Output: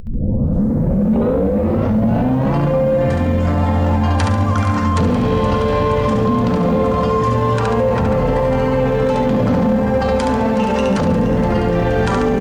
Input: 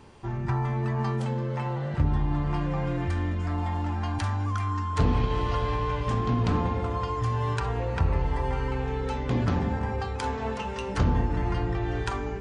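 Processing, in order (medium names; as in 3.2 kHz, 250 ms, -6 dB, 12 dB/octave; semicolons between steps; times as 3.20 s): tape start-up on the opening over 2.63 s; high-pass 120 Hz 6 dB/octave; small resonant body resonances 220/510 Hz, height 16 dB, ringing for 45 ms; upward compressor, threshold -30 dBFS; hum notches 60/120/180/240/300/360/420/480/540 Hz; on a send: feedback delay 70 ms, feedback 42%, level -4 dB; on the sum: loudness maximiser +28.5 dB; bit-crushed delay 472 ms, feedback 80%, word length 6-bit, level -13 dB; trim -8.5 dB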